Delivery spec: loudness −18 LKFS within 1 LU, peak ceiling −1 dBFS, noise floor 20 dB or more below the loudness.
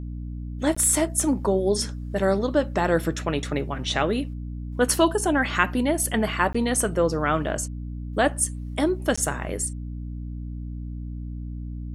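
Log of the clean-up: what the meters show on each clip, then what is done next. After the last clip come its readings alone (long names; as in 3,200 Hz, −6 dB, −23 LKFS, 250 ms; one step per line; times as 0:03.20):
number of dropouts 3; longest dropout 15 ms; mains hum 60 Hz; hum harmonics up to 300 Hz; level of the hum −30 dBFS; integrated loudness −24.0 LKFS; sample peak −4.0 dBFS; target loudness −18.0 LKFS
→ repair the gap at 0:00.75/0:06.53/0:09.16, 15 ms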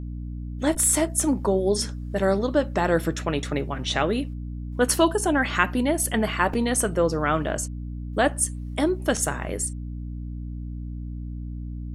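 number of dropouts 0; mains hum 60 Hz; hum harmonics up to 300 Hz; level of the hum −30 dBFS
→ mains-hum notches 60/120/180/240/300 Hz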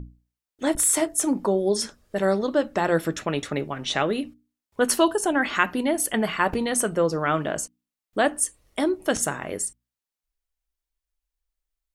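mains hum none found; integrated loudness −24.0 LKFS; sample peak −4.5 dBFS; target loudness −18.0 LKFS
→ level +6 dB
brickwall limiter −1 dBFS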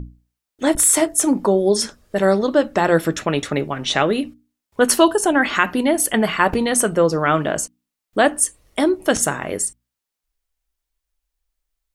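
integrated loudness −18.5 LKFS; sample peak −1.0 dBFS; background noise floor −84 dBFS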